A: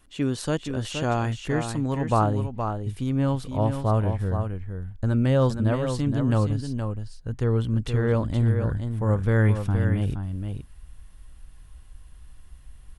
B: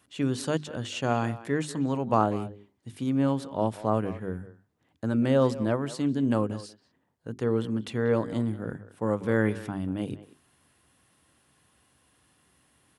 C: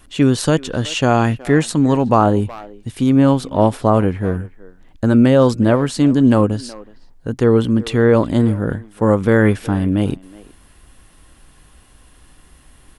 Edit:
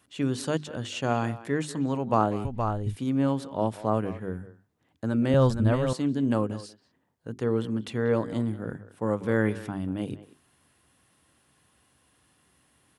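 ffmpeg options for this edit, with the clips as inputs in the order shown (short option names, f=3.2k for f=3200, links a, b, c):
-filter_complex "[0:a]asplit=2[a][b];[1:a]asplit=3[c][d][e];[c]atrim=end=2.452[f];[a]atrim=start=2.448:end=2.962[g];[d]atrim=start=2.958:end=5.342[h];[b]atrim=start=5.338:end=5.932[i];[e]atrim=start=5.928[j];[f][g]acrossfade=d=0.004:c1=hsin:c2=hsin[k];[k][h]acrossfade=d=0.004:c1=hsin:c2=hsin[l];[l][i]acrossfade=d=0.004:c1=hsin:c2=hsin[m];[m][j]acrossfade=d=0.004:c1=hsin:c2=hsin"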